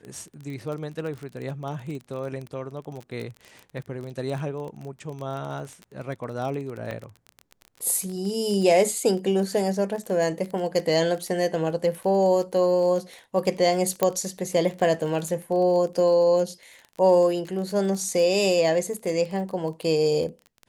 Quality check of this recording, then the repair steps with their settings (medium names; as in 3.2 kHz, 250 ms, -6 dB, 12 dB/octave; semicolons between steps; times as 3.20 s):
crackle 24 per s -31 dBFS
6.91 s: dropout 3.2 ms
14.03 s: pop -7 dBFS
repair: de-click; interpolate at 6.91 s, 3.2 ms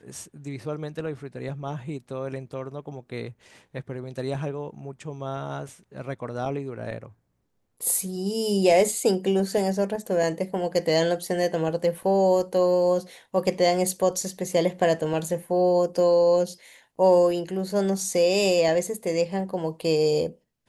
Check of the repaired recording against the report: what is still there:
nothing left